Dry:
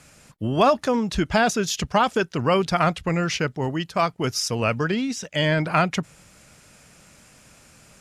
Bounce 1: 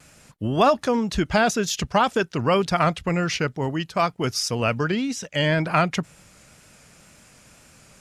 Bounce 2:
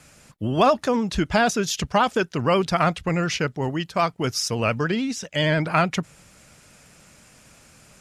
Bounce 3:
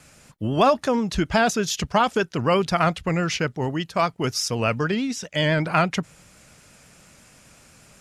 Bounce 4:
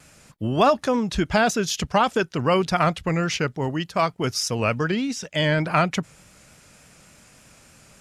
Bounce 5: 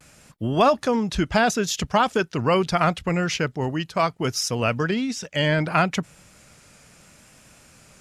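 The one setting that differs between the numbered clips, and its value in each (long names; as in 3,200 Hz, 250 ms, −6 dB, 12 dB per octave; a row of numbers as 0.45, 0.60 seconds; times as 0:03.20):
pitch vibrato, speed: 2, 13, 8.2, 3.4, 0.71 Hertz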